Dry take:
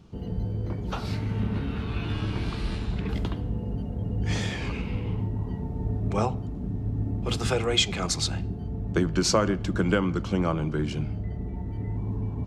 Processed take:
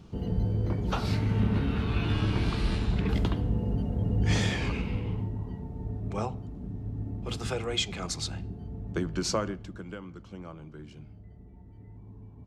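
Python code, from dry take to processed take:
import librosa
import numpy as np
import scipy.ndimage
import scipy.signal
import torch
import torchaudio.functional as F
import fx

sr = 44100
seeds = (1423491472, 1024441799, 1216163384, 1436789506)

y = fx.gain(x, sr, db=fx.line((4.51, 2.0), (5.64, -6.5), (9.39, -6.5), (9.84, -17.5)))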